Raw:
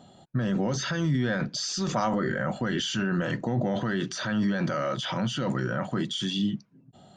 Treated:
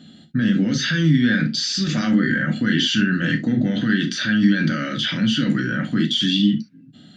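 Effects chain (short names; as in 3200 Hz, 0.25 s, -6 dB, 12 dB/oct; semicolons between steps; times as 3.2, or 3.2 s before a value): EQ curve 110 Hz 0 dB, 230 Hz +13 dB, 400 Hz -1 dB, 980 Hz -14 dB, 1600 Hz +10 dB, 2500 Hz +9 dB, 4000 Hz +11 dB, 6700 Hz +1 dB; on a send: reverb, pre-delay 3 ms, DRR 4 dB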